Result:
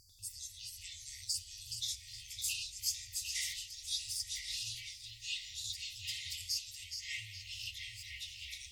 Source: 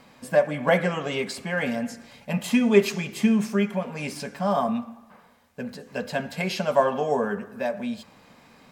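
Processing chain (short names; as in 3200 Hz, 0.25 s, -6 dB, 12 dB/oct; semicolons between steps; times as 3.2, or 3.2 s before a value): tape echo 0.421 s, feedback 56%, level -3.5 dB, low-pass 4900 Hz; FFT band-reject 110–4400 Hz; echoes that change speed 94 ms, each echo -5 st, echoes 3; gain +1 dB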